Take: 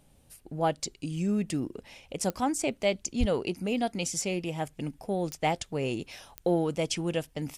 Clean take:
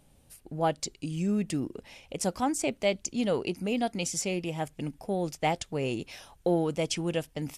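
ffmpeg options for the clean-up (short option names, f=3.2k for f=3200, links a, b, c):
-filter_complex "[0:a]adeclick=t=4,asplit=3[a][b][c];[a]afade=t=out:st=3.19:d=0.02[d];[b]highpass=f=140:w=0.5412,highpass=f=140:w=1.3066,afade=t=in:st=3.19:d=0.02,afade=t=out:st=3.31:d=0.02[e];[c]afade=t=in:st=3.31:d=0.02[f];[d][e][f]amix=inputs=3:normalize=0"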